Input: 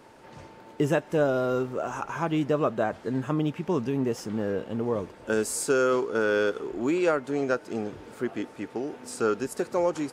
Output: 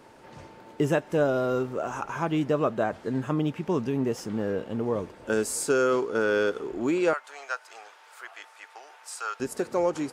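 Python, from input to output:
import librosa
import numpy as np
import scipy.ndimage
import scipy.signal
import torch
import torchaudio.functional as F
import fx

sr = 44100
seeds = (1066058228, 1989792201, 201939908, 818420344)

y = fx.highpass(x, sr, hz=830.0, slope=24, at=(7.13, 9.4))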